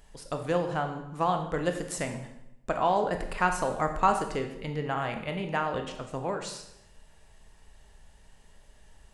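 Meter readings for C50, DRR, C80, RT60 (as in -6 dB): 8.0 dB, 5.0 dB, 10.5 dB, 0.85 s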